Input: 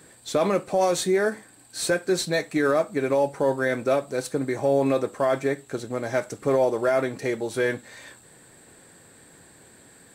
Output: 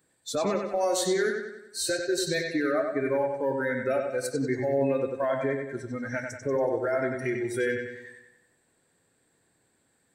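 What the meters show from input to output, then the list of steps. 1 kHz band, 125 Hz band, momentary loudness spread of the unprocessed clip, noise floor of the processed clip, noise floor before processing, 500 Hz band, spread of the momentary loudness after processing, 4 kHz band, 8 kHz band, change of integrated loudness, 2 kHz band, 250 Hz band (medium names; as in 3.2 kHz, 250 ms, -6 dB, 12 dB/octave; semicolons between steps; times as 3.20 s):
-5.0 dB, -3.5 dB, 8 LU, -70 dBFS, -53 dBFS, -4.0 dB, 8 LU, -1.5 dB, -1.5 dB, -4.0 dB, -2.5 dB, -3.0 dB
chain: spectral noise reduction 19 dB; peak limiter -19.5 dBFS, peak gain reduction 8 dB; bucket-brigade echo 94 ms, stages 4096, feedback 49%, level -5 dB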